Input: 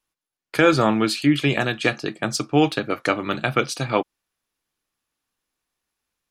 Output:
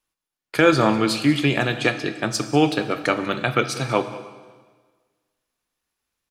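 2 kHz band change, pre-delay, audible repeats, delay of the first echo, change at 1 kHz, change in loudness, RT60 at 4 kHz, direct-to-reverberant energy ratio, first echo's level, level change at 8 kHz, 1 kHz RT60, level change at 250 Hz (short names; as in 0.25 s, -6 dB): +0.5 dB, 8 ms, 1, 0.193 s, +0.5 dB, +0.5 dB, 1.4 s, 9.5 dB, -18.5 dB, +0.5 dB, 1.5 s, +0.5 dB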